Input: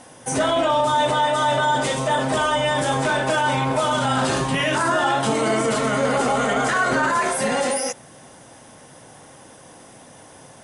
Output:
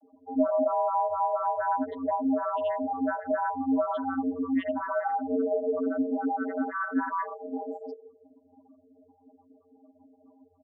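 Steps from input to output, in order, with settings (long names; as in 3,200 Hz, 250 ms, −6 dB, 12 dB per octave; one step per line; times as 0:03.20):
echo with shifted repeats 165 ms, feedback 46%, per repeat −42 Hz, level −18.5 dB
spectral peaks only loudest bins 4
channel vocoder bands 32, square 89.2 Hz
level −4 dB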